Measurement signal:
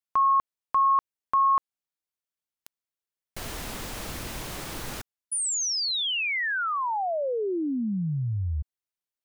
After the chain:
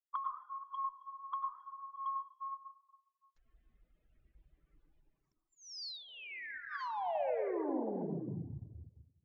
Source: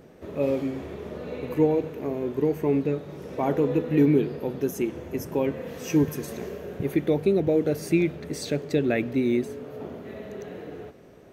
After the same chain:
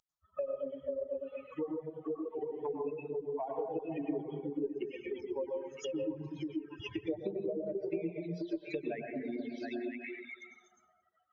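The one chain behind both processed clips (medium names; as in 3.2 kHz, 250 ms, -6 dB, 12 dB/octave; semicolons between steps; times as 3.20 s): expander on every frequency bin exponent 3; on a send: repeats whose band climbs or falls 241 ms, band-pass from 150 Hz, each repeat 1.4 oct, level -0.5 dB; on the sum: compression 10:1, threshold -40 dBFS; touch-sensitive phaser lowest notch 410 Hz, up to 1.3 kHz, full sweep at -44 dBFS; bass shelf 180 Hz -10 dB; plate-style reverb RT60 1.2 s, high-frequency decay 0.5×, pre-delay 85 ms, DRR -0.5 dB; reverb removal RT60 0.56 s; tilt EQ +3.5 dB/octave; low-pass that closes with the level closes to 1.6 kHz, closed at -40 dBFS; Chebyshev shaper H 4 -43 dB, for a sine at -35.5 dBFS; low-pass that closes with the level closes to 970 Hz, closed at -45.5 dBFS; trim +13 dB; WMA 128 kbps 16 kHz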